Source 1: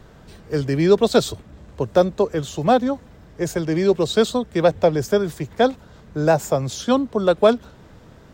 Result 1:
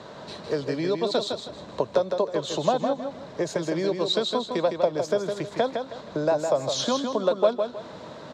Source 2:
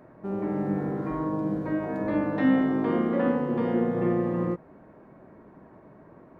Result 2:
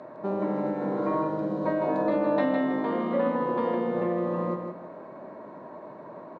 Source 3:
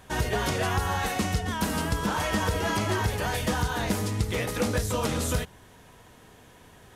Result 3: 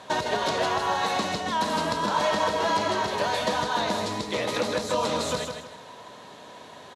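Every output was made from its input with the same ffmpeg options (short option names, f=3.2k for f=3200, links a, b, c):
-filter_complex "[0:a]acompressor=threshold=-30dB:ratio=6,highpass=190,equalizer=f=600:t=q:w=4:g=9,equalizer=f=1k:t=q:w=4:g=8,equalizer=f=4k:t=q:w=4:g=10,equalizer=f=9k:t=q:w=4:g=-8,lowpass=f=9.8k:w=0.5412,lowpass=f=9.8k:w=1.3066,asplit=2[a][b];[b]aecho=0:1:159|318|477|636:0.501|0.145|0.0421|0.0122[c];[a][c]amix=inputs=2:normalize=0,volume=4.5dB"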